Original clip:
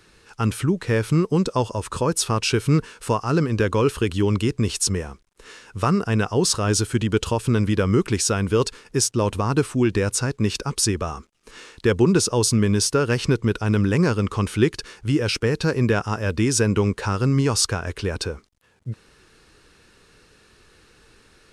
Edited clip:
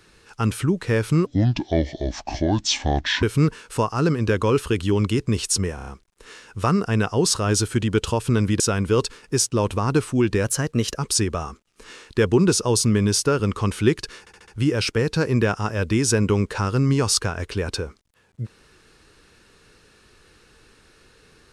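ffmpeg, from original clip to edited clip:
-filter_complex "[0:a]asplit=15[a][b][c][d][e][f][g][h][i][j][k][l][m][n][o];[a]atrim=end=1.264[p];[b]atrim=start=1.26:end=2.54,asetpts=PTS-STARTPTS,asetrate=28665,aresample=44100,atrim=end_sample=86843,asetpts=PTS-STARTPTS[q];[c]atrim=start=2.536:end=5.092[r];[d]atrim=start=5.058:end=5.092[s];[e]atrim=start=5.058:end=5.092[t];[f]atrim=start=5.058:end=5.092[u];[g]atrim=start=5.058:end=7.792[v];[h]atrim=start=8.218:end=10.064[w];[i]atrim=start=10.06:end=10.64,asetpts=PTS-STARTPTS,asetrate=48510,aresample=44100[x];[j]atrim=start=10.636:end=13.072[y];[k]atrim=start=14.148:end=15.022[z];[l]atrim=start=14.948:end=15.022[aa];[m]atrim=start=14.948:end=15.022[ab];[n]atrim=start=14.948:end=15.022[ac];[o]atrim=start=14.948[ad];[p][q]acrossfade=d=0.004:c1=hsin:c2=hsin[ae];[ae][r]acrossfade=d=0.004:c1=hsin:c2=hsin[af];[af][s]acrossfade=d=0.004:c1=hsin:c2=hsin[ag];[ag][t]acrossfade=d=0.004:c1=hsin:c2=hsin[ah];[ah][u]acrossfade=d=0.004:c1=hsin:c2=hsin[ai];[ai][v]acrossfade=d=0.004:c1=hsin:c2=hsin[aj];[aj][w]acrossfade=d=0.004:c1=hsin:c2=hsin[ak];[ak][x]acrossfade=d=0.004:c1=hsin:c2=hsin[al];[al][y]acrossfade=d=0.004:c1=hsin:c2=hsin[am];[am][z]acrossfade=d=0.004:c1=hsin:c2=hsin[an];[an][aa]acrossfade=d=0.004:c1=hsin:c2=hsin[ao];[ao][ab]acrossfade=d=0.004:c1=hsin:c2=hsin[ap];[ap][ac]acrossfade=d=0.004:c1=hsin:c2=hsin[aq];[aq][ad]acrossfade=d=0.004:c1=hsin:c2=hsin"

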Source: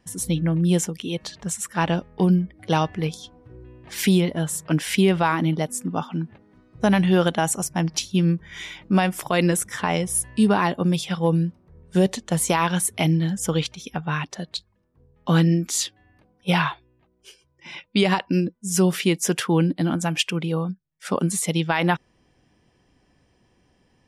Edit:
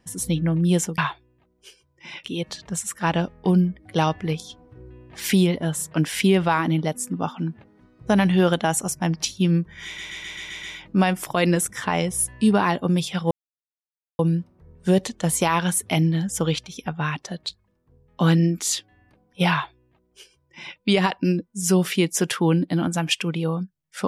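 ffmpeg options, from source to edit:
-filter_complex "[0:a]asplit=10[a][b][c][d][e][f][g][h][i][j];[a]atrim=end=0.982[k];[b]atrim=start=16.588:end=17.852[l];[c]atrim=start=0.978:end=8.722[m];[d]atrim=start=8.588:end=8.722[n];[e]atrim=start=8.588:end=8.722[o];[f]atrim=start=8.588:end=8.722[p];[g]atrim=start=8.588:end=8.722[q];[h]atrim=start=8.588:end=8.722[r];[i]atrim=start=8.588:end=11.27,asetpts=PTS-STARTPTS,afade=t=out:st=2.678:d=0.004:c=hsin,apad=pad_dur=0.88[s];[j]atrim=start=11.27,asetpts=PTS-STARTPTS,afade=t=in:d=0.004:c=hsin[t];[k][l]acrossfade=d=0.004:c1=hsin:c2=hsin[u];[u][m]acrossfade=d=0.004:c1=hsin:c2=hsin[v];[v][n]acrossfade=d=0.004:c1=hsin:c2=hsin[w];[w][o]acrossfade=d=0.004:c1=hsin:c2=hsin[x];[x][p]acrossfade=d=0.004:c1=hsin:c2=hsin[y];[y][q]acrossfade=d=0.004:c1=hsin:c2=hsin[z];[z][r]acrossfade=d=0.004:c1=hsin:c2=hsin[aa];[s][t]concat=n=2:v=0:a=1[ab];[aa][ab]acrossfade=d=0.004:c1=hsin:c2=hsin"

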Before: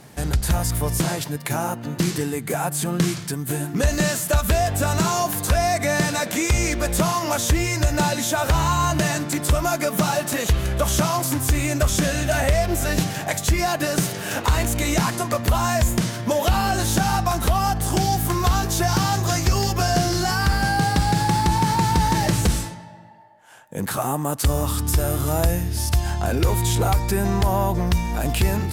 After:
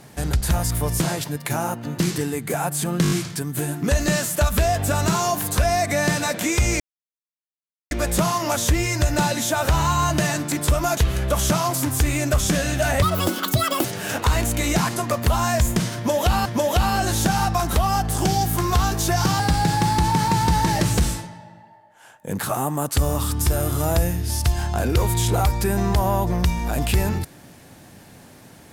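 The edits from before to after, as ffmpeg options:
-filter_complex "[0:a]asplit=11[a][b][c][d][e][f][g][h][i][j][k];[a]atrim=end=3.052[l];[b]atrim=start=3.028:end=3.052[m];[c]atrim=start=3.028:end=3.052[n];[d]atrim=start=3.028:end=3.052[o];[e]atrim=start=3.028:end=6.72,asetpts=PTS-STARTPTS,afade=t=out:st=3.688:d=0.004:c=hsin,apad=pad_dur=1.11[p];[f]atrim=start=6.72:end=9.782,asetpts=PTS-STARTPTS,afade=t=in:d=0.004:c=hsin[q];[g]atrim=start=10.458:end=12.514[r];[h]atrim=start=12.51:end=14.06,asetpts=PTS-STARTPTS,asetrate=82908,aresample=44100,atrim=end_sample=36359,asetpts=PTS-STARTPTS[s];[i]atrim=start=14.056:end=16.672[t];[j]atrim=start=16.168:end=19.112[u];[k]atrim=start=20.868[v];[l][m]acrossfade=d=0.004:c1=hsin:c2=hsin[w];[w][n]acrossfade=d=0.004:c1=hsin:c2=hsin[x];[x][o]acrossfade=d=0.004:c1=hsin:c2=hsin[y];[p][q]concat=n=2:v=0:a=1[z];[y][z]acrossfade=d=0.004:c1=hsin:c2=hsin[aa];[aa][r]acrossfade=d=0.004:c1=hsin:c2=hsin[ab];[ab][s]acrossfade=d=0.004:c1=hsin:c2=hsin[ac];[ac][t]acrossfade=d=0.004:c1=hsin:c2=hsin[ad];[ad][u]acrossfade=d=0.004:c1=hsin:c2=hsin[ae];[ae][v]acrossfade=d=0.004:c1=hsin:c2=hsin"

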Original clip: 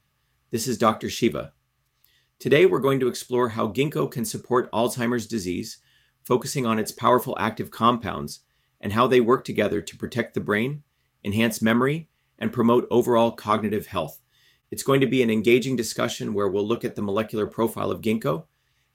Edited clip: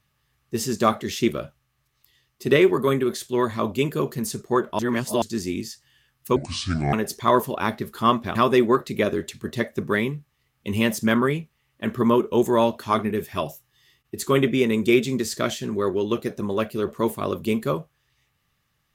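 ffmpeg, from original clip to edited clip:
-filter_complex "[0:a]asplit=6[a][b][c][d][e][f];[a]atrim=end=4.792[g];[b]atrim=start=4.788:end=5.222,asetpts=PTS-STARTPTS,areverse[h];[c]atrim=start=5.218:end=6.364[i];[d]atrim=start=6.36:end=6.72,asetpts=PTS-STARTPTS,asetrate=27783,aresample=44100[j];[e]atrim=start=6.716:end=8.142[k];[f]atrim=start=8.938[l];[g][h]acrossfade=d=0.004:c1=hsin:c2=hsin[m];[m][i]acrossfade=d=0.004:c1=hsin:c2=hsin[n];[n][j]acrossfade=d=0.004:c1=hsin:c2=hsin[o];[o][k]acrossfade=d=0.004:c1=hsin:c2=hsin[p];[p][l]acrossfade=d=0.004:c1=hsin:c2=hsin"

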